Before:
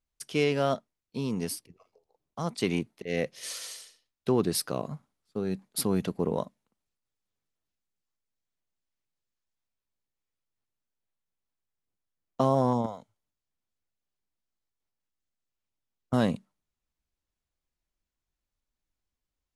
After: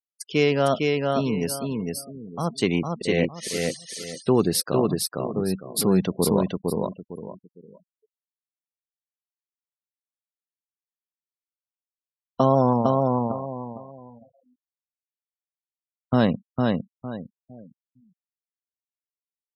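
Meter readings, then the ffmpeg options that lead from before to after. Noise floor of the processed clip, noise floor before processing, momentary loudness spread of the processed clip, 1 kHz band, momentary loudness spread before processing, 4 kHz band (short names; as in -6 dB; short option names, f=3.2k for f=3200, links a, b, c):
under -85 dBFS, under -85 dBFS, 15 LU, +7.5 dB, 14 LU, +7.0 dB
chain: -af "aecho=1:1:456|912|1368|1824:0.708|0.205|0.0595|0.0173,afftfilt=real='re*gte(hypot(re,im),0.00794)':imag='im*gte(hypot(re,im),0.00794)':win_size=1024:overlap=0.75,volume=5.5dB"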